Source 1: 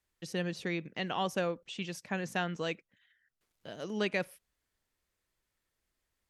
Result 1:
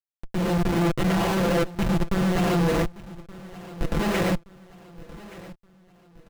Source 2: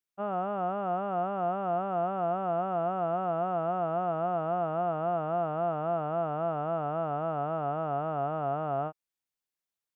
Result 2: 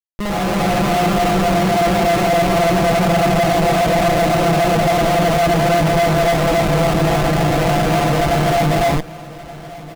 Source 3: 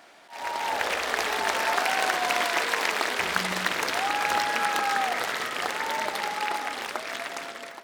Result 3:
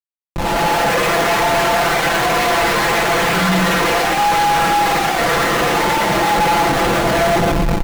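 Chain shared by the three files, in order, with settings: low shelf 72 Hz +3.5 dB; notch 4900 Hz, Q 6.3; in parallel at -1 dB: limiter -19 dBFS; on the sum: reverb removal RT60 0.84 s; non-linear reverb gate 0.15 s rising, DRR -3.5 dB; Schmitt trigger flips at -24.5 dBFS; high shelf 3900 Hz -6.5 dB; on a send: feedback echo 1.173 s, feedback 41%, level -18.5 dB; on the sum: AGC gain up to 4.5 dB; comb 5.9 ms

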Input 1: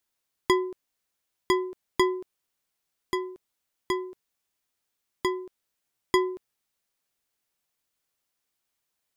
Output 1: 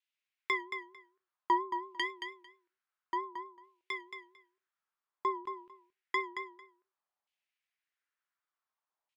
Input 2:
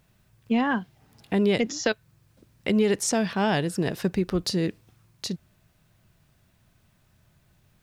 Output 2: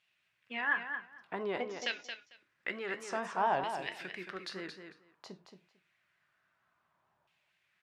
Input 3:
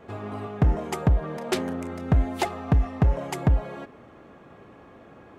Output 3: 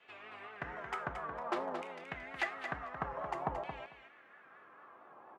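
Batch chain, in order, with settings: non-linear reverb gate 0.13 s falling, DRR 9.5 dB; vibrato 4.4 Hz 85 cents; LFO band-pass saw down 0.55 Hz 830–2800 Hz; on a send: feedback echo 0.224 s, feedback 15%, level -8 dB

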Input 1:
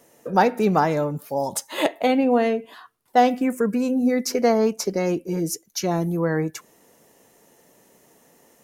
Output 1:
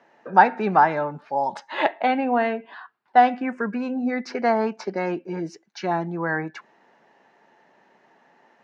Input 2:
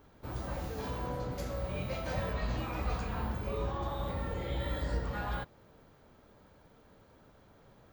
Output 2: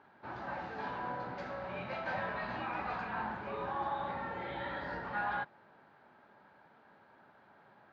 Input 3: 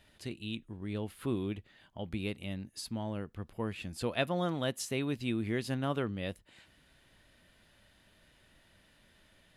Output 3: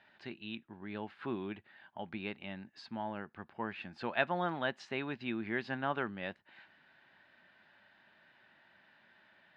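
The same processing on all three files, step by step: speaker cabinet 230–3800 Hz, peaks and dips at 290 Hz -5 dB, 480 Hz -8 dB, 850 Hz +7 dB, 1600 Hz +8 dB, 3300 Hz -5 dB

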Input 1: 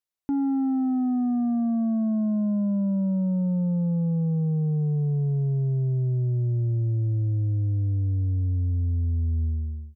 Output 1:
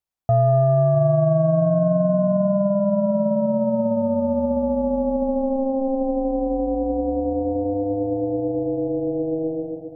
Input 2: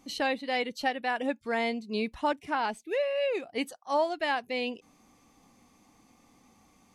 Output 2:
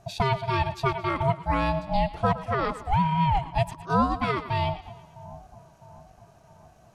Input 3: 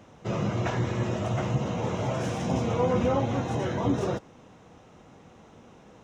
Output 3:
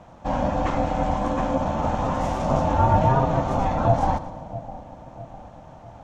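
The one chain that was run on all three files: bell 360 Hz +11.5 dB 1.7 oct; split-band echo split 460 Hz, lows 0.655 s, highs 0.113 s, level -14.5 dB; ring modulator 400 Hz; gain +1.5 dB

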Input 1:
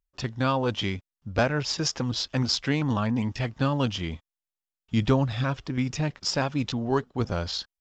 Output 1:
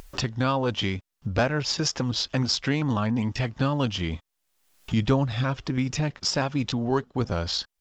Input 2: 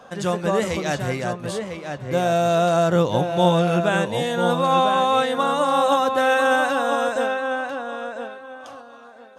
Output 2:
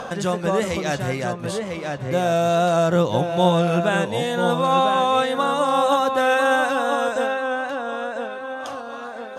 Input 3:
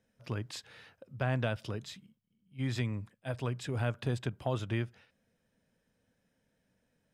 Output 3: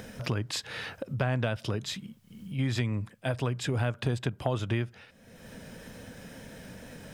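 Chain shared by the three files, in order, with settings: upward compressor, threshold -21 dBFS; wow and flutter 23 cents

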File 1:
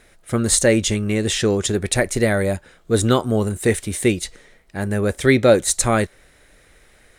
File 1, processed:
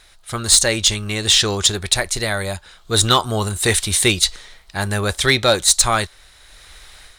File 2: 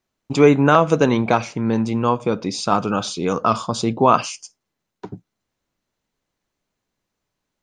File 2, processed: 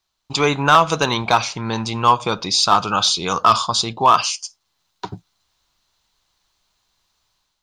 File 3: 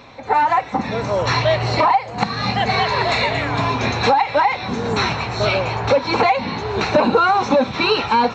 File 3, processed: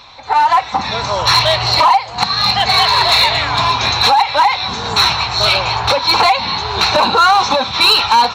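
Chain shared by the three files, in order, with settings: ten-band EQ 125 Hz -6 dB, 250 Hz -12 dB, 500 Hz -9 dB, 1000 Hz +4 dB, 2000 Hz -5 dB, 4000 Hz +9 dB; AGC gain up to 7.5 dB; in parallel at -7.5 dB: wavefolder -10 dBFS

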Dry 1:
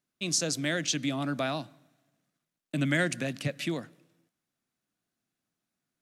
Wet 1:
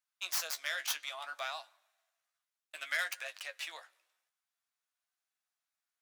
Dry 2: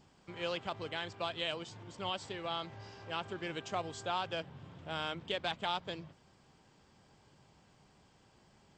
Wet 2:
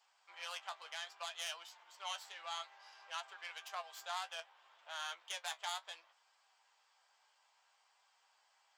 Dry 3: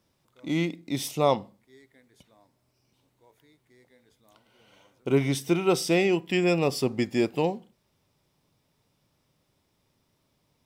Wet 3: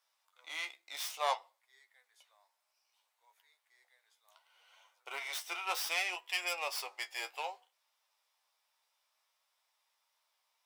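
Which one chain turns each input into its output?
tracing distortion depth 0.11 ms; inverse Chebyshev high-pass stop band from 230 Hz, stop band 60 dB; flange 0.62 Hz, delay 8.7 ms, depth 6.3 ms, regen +39%

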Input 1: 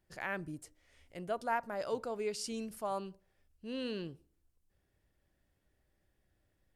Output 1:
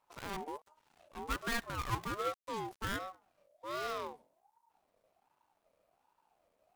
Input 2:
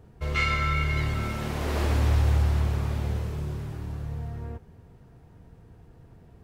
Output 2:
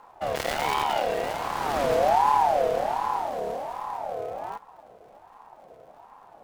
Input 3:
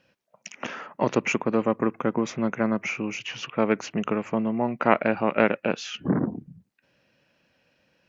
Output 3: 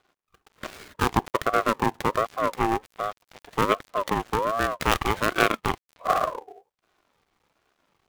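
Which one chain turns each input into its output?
switching dead time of 0.27 ms; ring modulator with a swept carrier 750 Hz, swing 25%, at 1.3 Hz; gain +3.5 dB

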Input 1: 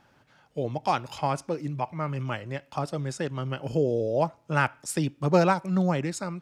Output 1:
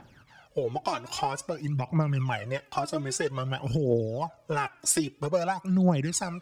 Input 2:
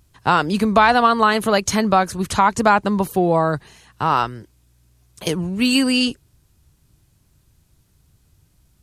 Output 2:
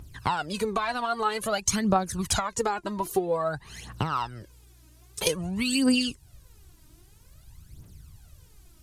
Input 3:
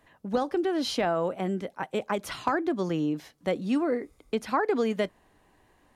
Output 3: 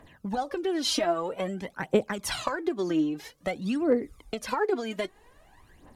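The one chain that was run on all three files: compressor 10:1, threshold -29 dBFS; dynamic EQ 7800 Hz, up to +6 dB, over -54 dBFS, Q 0.86; phaser 0.51 Hz, delay 3.3 ms, feedback 69%; gain +2.5 dB

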